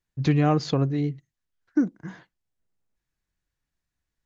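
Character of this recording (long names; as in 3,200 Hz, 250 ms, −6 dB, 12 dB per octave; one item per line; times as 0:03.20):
background noise floor −85 dBFS
spectral slope −7.5 dB per octave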